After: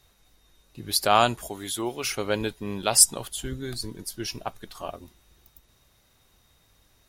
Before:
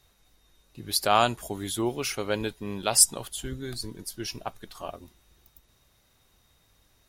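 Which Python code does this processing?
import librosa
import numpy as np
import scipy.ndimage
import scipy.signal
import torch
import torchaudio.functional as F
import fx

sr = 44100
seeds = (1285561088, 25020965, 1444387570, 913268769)

y = fx.low_shelf(x, sr, hz=330.0, db=-9.5, at=(1.49, 2.04))
y = y * librosa.db_to_amplitude(2.0)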